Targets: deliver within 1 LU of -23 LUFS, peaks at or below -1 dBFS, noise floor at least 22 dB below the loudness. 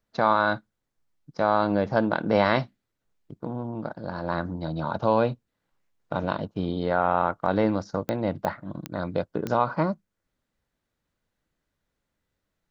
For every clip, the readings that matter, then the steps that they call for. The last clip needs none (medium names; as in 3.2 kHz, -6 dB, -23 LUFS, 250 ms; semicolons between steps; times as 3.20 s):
clicks found 4; loudness -26.5 LUFS; peak level -6.5 dBFS; loudness target -23.0 LUFS
-> de-click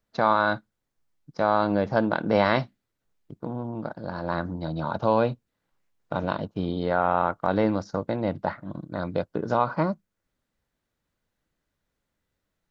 clicks found 0; loudness -26.5 LUFS; peak level -6.5 dBFS; loudness target -23.0 LUFS
-> trim +3.5 dB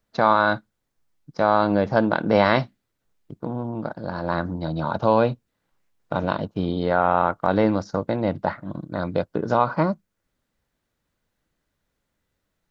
loudness -23.0 LUFS; peak level -3.0 dBFS; noise floor -78 dBFS